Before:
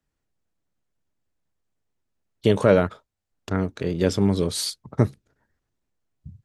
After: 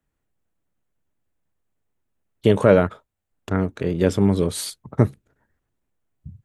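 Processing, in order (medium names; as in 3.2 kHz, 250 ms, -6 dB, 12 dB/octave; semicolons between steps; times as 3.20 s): peaking EQ 5 kHz -8.5 dB 0.93 oct; trim +2.5 dB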